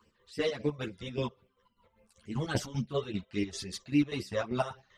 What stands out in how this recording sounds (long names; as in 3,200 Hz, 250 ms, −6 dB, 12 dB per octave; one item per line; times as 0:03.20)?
phaser sweep stages 12, 3.6 Hz, lowest notch 240–1,300 Hz
chopped level 5.1 Hz, depth 65%, duty 50%
a shimmering, thickened sound